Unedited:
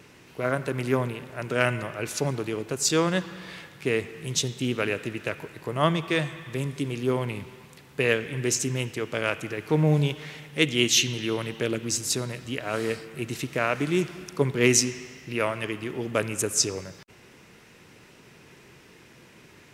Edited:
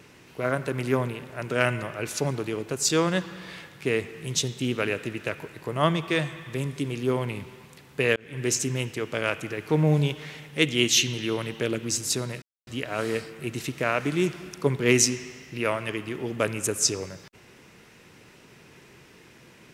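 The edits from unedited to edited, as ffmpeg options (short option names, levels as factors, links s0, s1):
-filter_complex "[0:a]asplit=3[s0][s1][s2];[s0]atrim=end=8.16,asetpts=PTS-STARTPTS,afade=t=out:st=8.156:d=0.004:c=hsin[s3];[s1]atrim=start=8.16:end=12.42,asetpts=PTS-STARTPTS,afade=t=in:d=0.31,afade=t=out:st=4.256:d=0.004:c=hsin,apad=pad_dur=0.25[s4];[s2]atrim=start=12.42,asetpts=PTS-STARTPTS,afade=t=in:d=0.004:c=hsin[s5];[s3][s4][s5]concat=n=3:v=0:a=1"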